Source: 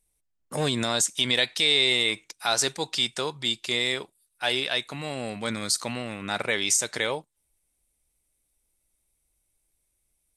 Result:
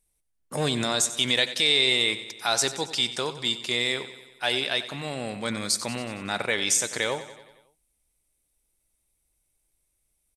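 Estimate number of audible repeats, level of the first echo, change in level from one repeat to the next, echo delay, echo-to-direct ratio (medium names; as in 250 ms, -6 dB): 5, -14.0 dB, -4.5 dB, 92 ms, -12.0 dB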